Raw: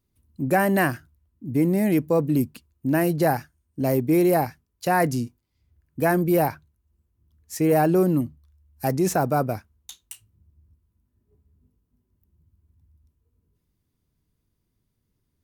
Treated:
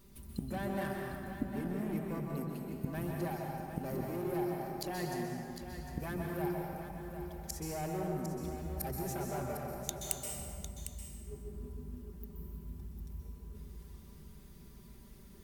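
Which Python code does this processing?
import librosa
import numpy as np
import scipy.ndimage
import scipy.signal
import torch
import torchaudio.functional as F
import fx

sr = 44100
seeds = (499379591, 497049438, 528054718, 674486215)

p1 = x + 0.78 * np.pad(x, (int(5.1 * sr / 1000.0), 0))[:len(x)]
p2 = fx.over_compress(p1, sr, threshold_db=-20.0, ratio=-1.0)
p3 = p1 + F.gain(torch.from_numpy(p2), -3.0).numpy()
p4 = 10.0 ** (-14.0 / 20.0) * np.tanh(p3 / 10.0 ** (-14.0 / 20.0))
p5 = fx.gate_flip(p4, sr, shuts_db=-32.0, range_db=-31)
p6 = p5 + fx.echo_single(p5, sr, ms=753, db=-9.5, dry=0)
p7 = fx.rev_plate(p6, sr, seeds[0], rt60_s=2.2, hf_ratio=0.6, predelay_ms=115, drr_db=-0.5)
y = F.gain(torch.from_numpy(p7), 9.0).numpy()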